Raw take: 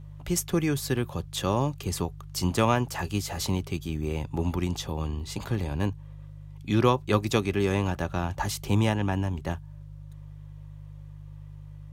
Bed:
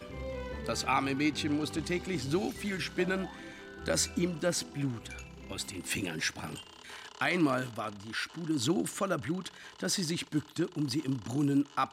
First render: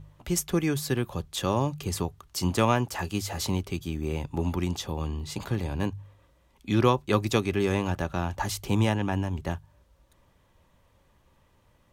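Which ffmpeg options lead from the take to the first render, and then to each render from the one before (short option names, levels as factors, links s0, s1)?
-af "bandreject=f=50:t=h:w=4,bandreject=f=100:t=h:w=4,bandreject=f=150:t=h:w=4"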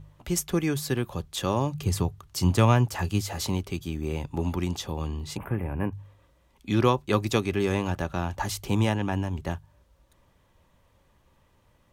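-filter_complex "[0:a]asettb=1/sr,asplit=3[s0][s1][s2];[s0]atrim=end=1.744[s3];[s1]atrim=start=1.74:end=3.22,asetpts=PTS-STARTPTS,afade=t=in:d=0.004:c=qsin,afade=t=out:st=1.476:d=0.004:c=qsin,equalizer=f=110:w=1.2:g=8.5[s4];[s2]atrim=start=3.216[s5];[s3][s4]acrossfade=d=0.004:c1=hsin:c2=qsin[s6];[s6][s5]acrossfade=d=0.004:c1=qsin:c2=hsin,asettb=1/sr,asplit=3[s7][s8][s9];[s7]atrim=end=5.374[s10];[s8]atrim=start=5.37:end=5.93,asetpts=PTS-STARTPTS,afade=t=in:d=0.004:c=qsin,afade=t=out:st=0.556:d=0.004:c=qsin,asuperstop=centerf=5300:order=8:qfactor=0.69[s11];[s9]atrim=start=5.926[s12];[s10][s11]acrossfade=d=0.004:c1=hsin:c2=qsin[s13];[s13][s12]acrossfade=d=0.004:c1=qsin:c2=hsin"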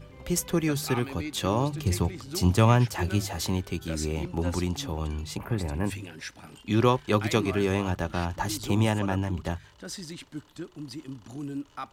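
-filter_complex "[1:a]volume=0.447[s0];[0:a][s0]amix=inputs=2:normalize=0"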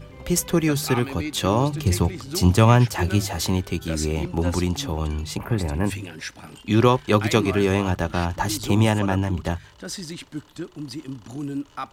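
-af "volume=1.88,alimiter=limit=0.708:level=0:latency=1"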